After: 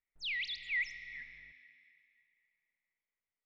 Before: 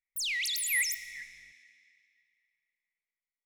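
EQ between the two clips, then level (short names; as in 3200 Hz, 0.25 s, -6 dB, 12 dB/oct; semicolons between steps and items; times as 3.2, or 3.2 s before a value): Bessel low-pass 2400 Hz, order 8; low shelf 180 Hz +3 dB; dynamic EQ 1800 Hz, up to -4 dB, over -46 dBFS, Q 1.4; +1.5 dB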